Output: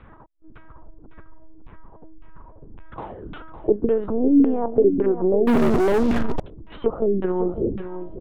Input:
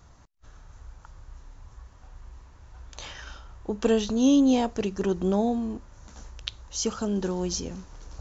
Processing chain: LPC vocoder at 8 kHz pitch kept; compressor 4:1, threshold -26 dBFS, peak gain reduction 9.5 dB; LFO low-pass saw down 1.8 Hz 230–2700 Hz; bell 430 Hz +6 dB 1.2 oct; on a send: echo 0.557 s -10.5 dB; on the sum: treble ducked by the level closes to 1200 Hz, closed at -21.5 dBFS; 5.47–6.4 sample leveller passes 5; gain +5 dB

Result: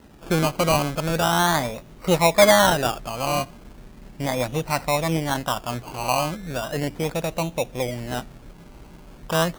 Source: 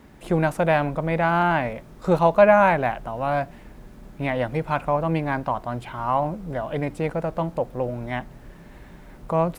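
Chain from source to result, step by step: decimation with a swept rate 19×, swing 60% 0.37 Hz

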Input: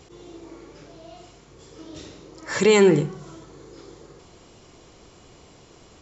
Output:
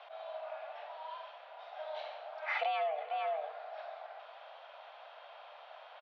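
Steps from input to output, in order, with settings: outdoor echo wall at 78 m, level -13 dB; mistuned SSB +300 Hz 270–3300 Hz; compressor 10:1, threshold -32 dBFS, peak gain reduction 19.5 dB

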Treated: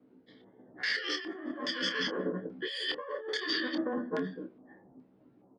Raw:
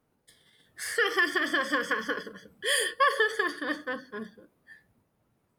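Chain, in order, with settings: short-time reversal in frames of 32 ms; weighting filter D; low-pass opened by the level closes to 870 Hz, open at -20.5 dBFS; LPF 12000 Hz; bell 270 Hz +13.5 dB 1.2 oct; negative-ratio compressor -35 dBFS, ratio -1; limiter -25 dBFS, peak gain reduction 8.5 dB; LFO low-pass square 1.2 Hz 820–4800 Hz; doubler 27 ms -8.5 dB

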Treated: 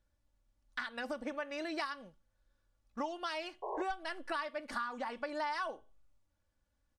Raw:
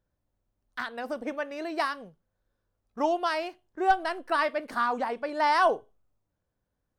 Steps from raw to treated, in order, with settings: LPF 9200 Hz 12 dB/oct; bell 380 Hz -8 dB 2.8 oct; comb 3.5 ms, depth 55%; compressor 6:1, threshold -38 dBFS, peak gain reduction 16 dB; painted sound noise, 3.62–3.83, 350–1100 Hz -42 dBFS; gain +2.5 dB

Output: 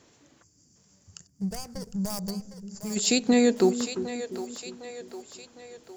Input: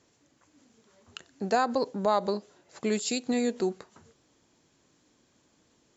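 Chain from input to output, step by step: 1.27–1.95 median filter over 41 samples; in parallel at -8.5 dB: wrapped overs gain 17.5 dB; 0.42–2.97 on the sum: spectral gain 200–4500 Hz -20 dB; split-band echo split 400 Hz, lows 0.347 s, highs 0.757 s, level -10 dB; gain +4.5 dB

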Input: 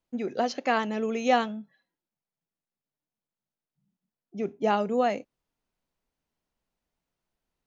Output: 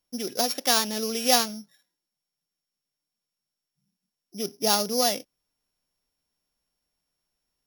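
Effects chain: sample sorter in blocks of 8 samples; high shelf 2100 Hz +11 dB; gain -2 dB

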